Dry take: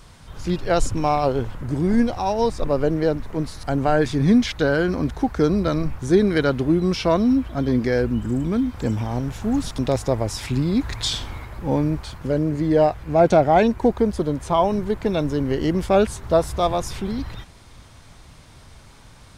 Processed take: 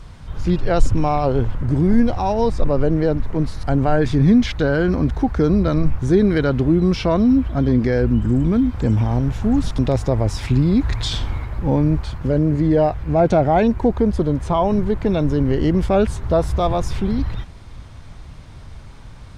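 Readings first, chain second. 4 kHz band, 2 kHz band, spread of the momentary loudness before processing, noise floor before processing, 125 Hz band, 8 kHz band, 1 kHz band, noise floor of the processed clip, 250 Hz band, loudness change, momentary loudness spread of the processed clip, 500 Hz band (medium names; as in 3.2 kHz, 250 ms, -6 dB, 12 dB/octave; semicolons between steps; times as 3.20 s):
-1.5 dB, -0.5 dB, 9 LU, -47 dBFS, +6.5 dB, no reading, 0.0 dB, -38 dBFS, +3.5 dB, +2.5 dB, 6 LU, +0.5 dB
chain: in parallel at +2 dB: peak limiter -15.5 dBFS, peak gain reduction 10 dB; on the sum: low-pass 3.7 kHz 6 dB/octave; bass shelf 160 Hz +8.5 dB; trim -4.5 dB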